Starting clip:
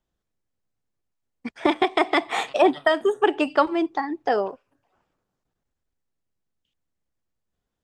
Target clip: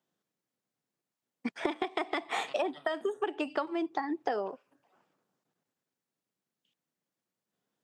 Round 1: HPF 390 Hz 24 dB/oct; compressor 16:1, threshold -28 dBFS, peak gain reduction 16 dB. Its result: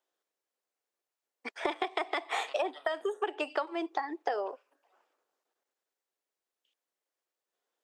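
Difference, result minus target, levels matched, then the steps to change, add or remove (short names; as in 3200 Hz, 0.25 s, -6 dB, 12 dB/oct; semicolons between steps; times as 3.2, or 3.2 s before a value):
125 Hz band -11.5 dB
change: HPF 150 Hz 24 dB/oct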